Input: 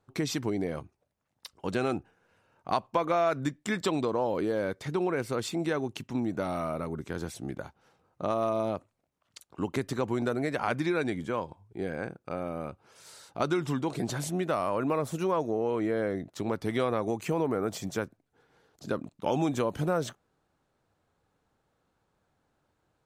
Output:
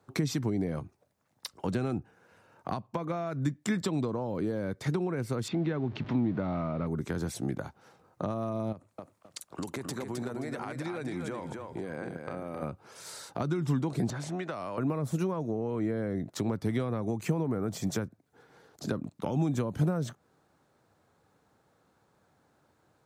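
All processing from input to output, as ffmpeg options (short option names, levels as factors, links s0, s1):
-filter_complex "[0:a]asettb=1/sr,asplit=3[s0][s1][s2];[s0]atrim=end=5.484[s3];[s1]atrim=start=5.48:end=6.87,asetpts=PTS-STARTPTS,afade=t=in:d=0.004:c=qsin,afade=t=out:st=1.386:d=0.004:c=qsin,aeval=exprs='val(0)+0.5*0.0075*sgn(val(0))':c=same,lowpass=f=3800:w=0.5412,lowpass=f=3800:w=1.3066[s4];[s2]atrim=start=6.866[s5];[s3][s4]acrossfade=d=0.004:c1=hsin:c2=qsin[s6];[s6][s5]acrossfade=d=0.004:c1=qsin:c2=hsin,asettb=1/sr,asplit=3[s7][s8][s9];[s7]atrim=end=8.724[s10];[s8]atrim=start=8.72:end=12.62,asetpts=PTS-STARTPTS,afade=t=in:d=0.004:c=qsin,afade=t=out:st=3.896:d=0.004:c=qsin,equalizer=f=9000:t=o:w=0.76:g=3.5,acompressor=threshold=0.0126:ratio=10:attack=3.2:release=140:knee=1:detection=peak,aecho=1:1:263|526|789:0.531|0.122|0.0281,atrim=end_sample=171990[s11];[s9]atrim=start=12.616[s12];[s10][s11]acrossfade=d=0.004:c1=hsin:c2=qsin[s13];[s13][s12]acrossfade=d=0.004:c1=qsin:c2=hsin,asettb=1/sr,asplit=3[s14][s15][s16];[s14]atrim=end=14.104[s17];[s15]atrim=start=14.1:end=14.78,asetpts=PTS-STARTPTS,afade=t=in:d=0.004:c=qsin,afade=t=out:st=0.676:d=0.004:c=qsin,lowpass=6200,acrossover=split=720|2300[s18][s19][s20];[s18]acompressor=threshold=0.00794:ratio=4[s21];[s19]acompressor=threshold=0.00562:ratio=4[s22];[s20]acompressor=threshold=0.00282:ratio=4[s23];[s21][s22][s23]amix=inputs=3:normalize=0[s24];[s16]atrim=start=14.776[s25];[s17][s24]acrossfade=d=0.004:c1=hsin:c2=qsin[s26];[s26][s25]acrossfade=d=0.004:c1=qsin:c2=hsin,highpass=89,equalizer=f=2900:t=o:w=0.59:g=-4,acrossover=split=210[s27][s28];[s28]acompressor=threshold=0.01:ratio=10[s29];[s27][s29]amix=inputs=2:normalize=0,volume=2.24"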